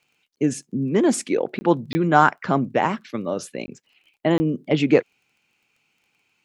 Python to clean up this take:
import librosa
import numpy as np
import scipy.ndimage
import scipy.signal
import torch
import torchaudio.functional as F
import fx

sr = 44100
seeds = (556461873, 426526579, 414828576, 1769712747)

y = fx.fix_declick_ar(x, sr, threshold=6.5)
y = fx.fix_interpolate(y, sr, at_s=(1.59, 1.93, 3.66, 4.38), length_ms=20.0)